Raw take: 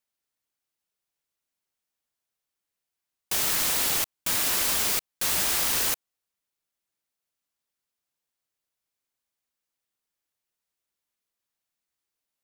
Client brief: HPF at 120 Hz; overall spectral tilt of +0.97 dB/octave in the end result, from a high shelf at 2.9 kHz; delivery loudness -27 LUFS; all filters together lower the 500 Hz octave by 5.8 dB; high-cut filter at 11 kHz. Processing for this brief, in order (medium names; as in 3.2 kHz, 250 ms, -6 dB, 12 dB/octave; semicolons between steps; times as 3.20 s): high-pass 120 Hz; low-pass 11 kHz; peaking EQ 500 Hz -8 dB; treble shelf 2.9 kHz +7 dB; trim -6 dB